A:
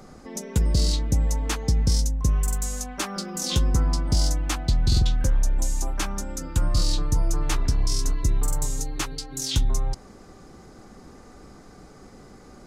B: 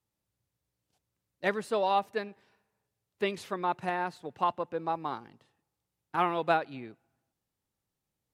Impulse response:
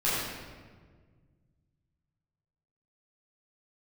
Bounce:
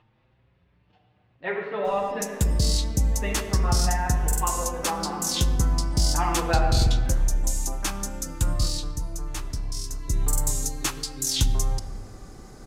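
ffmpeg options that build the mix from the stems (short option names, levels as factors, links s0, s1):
-filter_complex "[0:a]adelay=1850,volume=2.24,afade=t=out:st=8.51:d=0.44:silence=0.421697,afade=t=in:st=9.98:d=0.31:silence=0.354813,asplit=2[s0][s1];[s1]volume=0.0631[s2];[1:a]lowpass=f=2900:w=0.5412,lowpass=f=2900:w=1.3066,asplit=2[s3][s4];[s4]adelay=6.1,afreqshift=0.93[s5];[s3][s5]amix=inputs=2:normalize=1,volume=0.891,asplit=2[s6][s7];[s7]volume=0.355[s8];[2:a]atrim=start_sample=2205[s9];[s2][s8]amix=inputs=2:normalize=0[s10];[s10][s9]afir=irnorm=-1:irlink=0[s11];[s0][s6][s11]amix=inputs=3:normalize=0,highshelf=f=6900:g=8.5,acompressor=mode=upward:threshold=0.00447:ratio=2.5"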